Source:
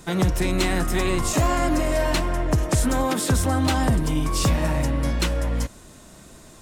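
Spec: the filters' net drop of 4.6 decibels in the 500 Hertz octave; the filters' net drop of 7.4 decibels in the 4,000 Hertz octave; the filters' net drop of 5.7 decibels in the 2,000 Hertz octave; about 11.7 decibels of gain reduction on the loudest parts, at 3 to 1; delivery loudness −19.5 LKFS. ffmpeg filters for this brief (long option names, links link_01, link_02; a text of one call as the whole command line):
ffmpeg -i in.wav -af "equalizer=frequency=500:width_type=o:gain=-6,equalizer=frequency=2000:width_type=o:gain=-5,equalizer=frequency=4000:width_type=o:gain=-8,acompressor=threshold=-33dB:ratio=3,volume=15dB" out.wav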